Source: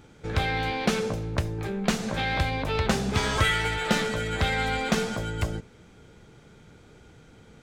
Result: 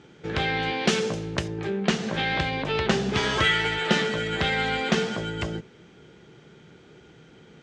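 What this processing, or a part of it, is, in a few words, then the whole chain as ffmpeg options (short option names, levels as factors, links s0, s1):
car door speaker: -filter_complex "[0:a]asettb=1/sr,asplit=3[s0][s1][s2];[s0]atrim=end=0.854[s3];[s1]atrim=start=0.85:end=1.48,asetpts=PTS-STARTPTS,afade=t=in:d=0.004:c=qsin,afade=t=out:st=0.626:d=0.004:c=qsin,aemphasis=mode=production:type=50fm[s4];[s2]atrim=start=1.476[s5];[s3][s4]acrossfade=d=0.004:c1=hsin:c2=qsin[s6];[s6][s5]acrossfade=d=0.004:c1=qsin:c2=hsin,highpass=84,equalizer=f=95:t=q:w=4:g=-8,equalizer=f=160:t=q:w=4:g=4,equalizer=f=370:t=q:w=4:g=7,equalizer=f=1800:t=q:w=4:g=4,equalizer=f=3000:t=q:w=4:g=6,lowpass=f=6900:w=0.5412,lowpass=f=6900:w=1.3066"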